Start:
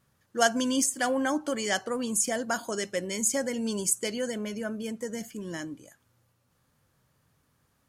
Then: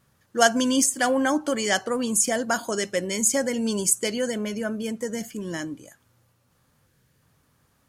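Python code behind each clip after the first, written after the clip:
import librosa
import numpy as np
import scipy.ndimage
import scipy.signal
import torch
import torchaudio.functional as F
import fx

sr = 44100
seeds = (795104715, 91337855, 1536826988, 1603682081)

y = fx.spec_box(x, sr, start_s=6.87, length_s=0.34, low_hz=550.0, high_hz=1400.0, gain_db=-6)
y = y * 10.0 ** (5.0 / 20.0)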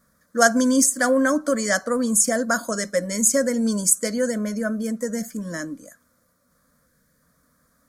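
y = fx.fixed_phaser(x, sr, hz=560.0, stages=8)
y = y * 10.0 ** (4.5 / 20.0)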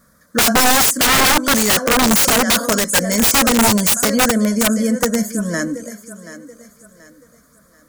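y = fx.echo_thinned(x, sr, ms=731, feedback_pct=36, hz=190.0, wet_db=-14)
y = (np.mod(10.0 ** (17.0 / 20.0) * y + 1.0, 2.0) - 1.0) / 10.0 ** (17.0 / 20.0)
y = y * 10.0 ** (9.0 / 20.0)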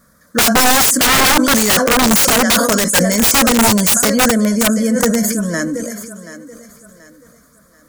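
y = fx.sustainer(x, sr, db_per_s=34.0)
y = y * 10.0 ** (1.5 / 20.0)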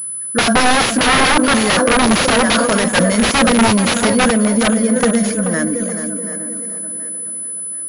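y = fx.echo_tape(x, sr, ms=430, feedback_pct=49, wet_db=-7, lp_hz=1400.0, drive_db=5.0, wow_cents=15)
y = fx.pwm(y, sr, carrier_hz=10000.0)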